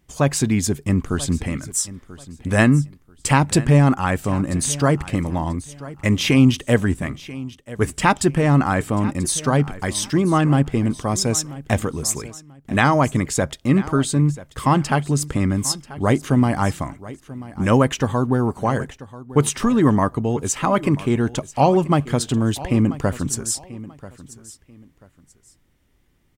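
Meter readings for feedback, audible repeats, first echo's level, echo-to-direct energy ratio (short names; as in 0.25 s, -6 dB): 25%, 2, -17.5 dB, -17.5 dB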